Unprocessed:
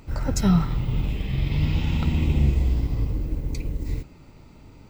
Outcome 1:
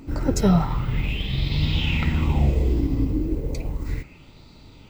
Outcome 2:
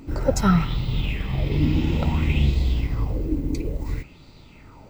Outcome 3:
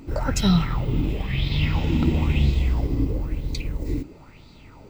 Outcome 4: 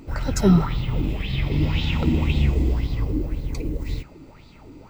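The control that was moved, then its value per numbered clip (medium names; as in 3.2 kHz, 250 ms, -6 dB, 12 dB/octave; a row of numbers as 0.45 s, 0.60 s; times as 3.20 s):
sweeping bell, rate: 0.33 Hz, 0.58 Hz, 1 Hz, 1.9 Hz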